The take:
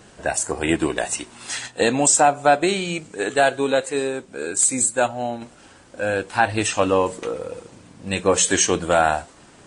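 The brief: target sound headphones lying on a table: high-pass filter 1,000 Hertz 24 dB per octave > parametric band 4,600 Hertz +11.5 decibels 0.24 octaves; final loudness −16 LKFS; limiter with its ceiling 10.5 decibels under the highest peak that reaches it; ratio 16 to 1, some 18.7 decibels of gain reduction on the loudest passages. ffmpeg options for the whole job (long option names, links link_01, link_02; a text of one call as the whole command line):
ffmpeg -i in.wav -af "acompressor=threshold=-30dB:ratio=16,alimiter=level_in=1dB:limit=-24dB:level=0:latency=1,volume=-1dB,highpass=frequency=1000:width=0.5412,highpass=frequency=1000:width=1.3066,equalizer=frequency=4600:width_type=o:width=0.24:gain=11.5,volume=23dB" out.wav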